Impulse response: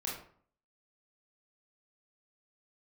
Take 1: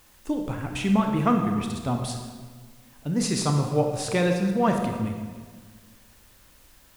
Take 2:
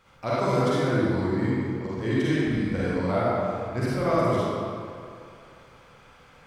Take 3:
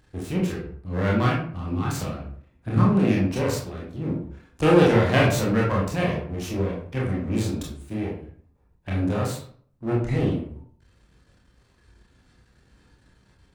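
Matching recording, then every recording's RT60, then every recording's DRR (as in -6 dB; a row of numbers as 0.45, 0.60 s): 3; 1.6, 2.4, 0.55 s; 3.5, -9.0, -4.5 dB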